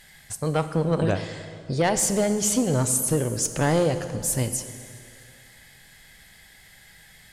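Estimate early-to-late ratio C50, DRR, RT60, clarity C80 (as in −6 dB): 10.5 dB, 9.5 dB, 2.4 s, 11.5 dB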